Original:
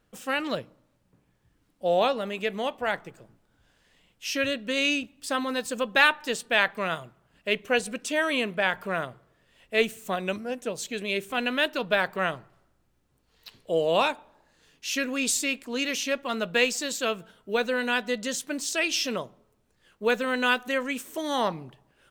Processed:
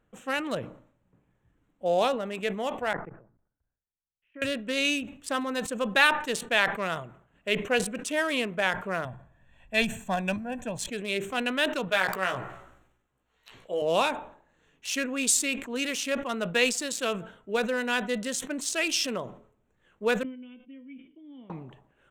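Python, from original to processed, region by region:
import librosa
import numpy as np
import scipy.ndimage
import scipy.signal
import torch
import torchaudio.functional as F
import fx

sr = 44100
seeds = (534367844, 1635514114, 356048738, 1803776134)

y = fx.chain(x, sr, fx.lowpass(hz=1800.0, slope=24),
    fx.level_steps(step_db=21),
    fx.band_widen(depth_pct=70), at=(2.93, 4.42))
y = fx.chain(y, sr, fx.low_shelf(hz=98.0, db=10.5),
    fx.comb(ms=1.2, depth=0.67), at=(9.05, 10.88))
y = fx.chain(y, sr, fx.low_shelf(hz=470.0, db=-11.0),
    fx.doubler(ms=16.0, db=-4.5),
    fx.sustainer(db_per_s=63.0), at=(11.88, 13.82))
y = fx.chain(y, sr, fx.formant_cascade(vowel='i'),
    fx.comb_fb(f0_hz=170.0, decay_s=0.31, harmonics='all', damping=0.0, mix_pct=70), at=(20.23, 21.5))
y = fx.wiener(y, sr, points=9)
y = fx.peak_eq(y, sr, hz=9100.0, db=7.0, octaves=1.2)
y = fx.sustainer(y, sr, db_per_s=110.0)
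y = F.gain(torch.from_numpy(y), -1.5).numpy()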